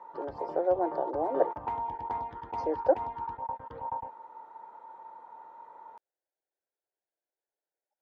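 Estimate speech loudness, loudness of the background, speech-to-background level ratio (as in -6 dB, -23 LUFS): -31.0 LUFS, -38.5 LUFS, 7.5 dB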